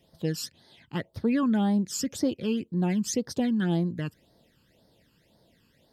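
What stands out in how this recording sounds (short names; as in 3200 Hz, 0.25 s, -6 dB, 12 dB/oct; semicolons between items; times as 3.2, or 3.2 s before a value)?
phasing stages 12, 1.9 Hz, lowest notch 630–2600 Hz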